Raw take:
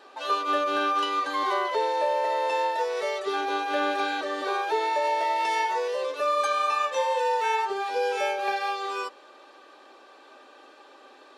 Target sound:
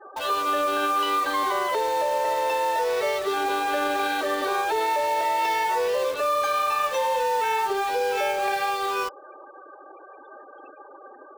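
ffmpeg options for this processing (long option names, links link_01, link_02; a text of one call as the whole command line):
ffmpeg -i in.wav -filter_complex "[0:a]highshelf=frequency=8100:gain=-8.5,bandreject=frequency=50:width_type=h:width=6,bandreject=frequency=100:width_type=h:width=6,bandreject=frequency=150:width_type=h:width=6,bandreject=frequency=200:width_type=h:width=6,bandreject=frequency=250:width_type=h:width=6,bandreject=frequency=300:width_type=h:width=6,afftfilt=real='re*gte(hypot(re,im),0.00631)':imag='im*gte(hypot(re,im),0.00631)':win_size=1024:overlap=0.75,alimiter=limit=-21.5dB:level=0:latency=1:release=58,asplit=2[link_01][link_02];[link_02]aeval=exprs='(mod(53.1*val(0)+1,2)-1)/53.1':channel_layout=same,volume=-8dB[link_03];[link_01][link_03]amix=inputs=2:normalize=0,volume=5dB" out.wav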